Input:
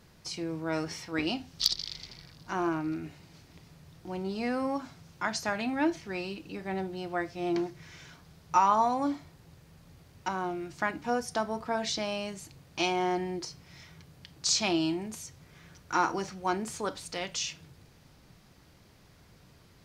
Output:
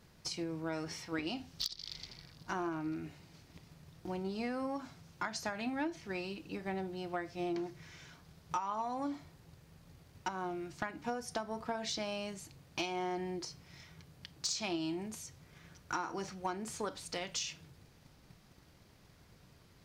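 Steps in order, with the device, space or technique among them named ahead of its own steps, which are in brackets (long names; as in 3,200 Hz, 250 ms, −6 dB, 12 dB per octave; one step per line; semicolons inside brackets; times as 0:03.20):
drum-bus smash (transient designer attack +6 dB, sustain +1 dB; downward compressor 6 to 1, threshold −28 dBFS, peak gain reduction 14 dB; soft clipping −19 dBFS, distortion −23 dB)
level −4.5 dB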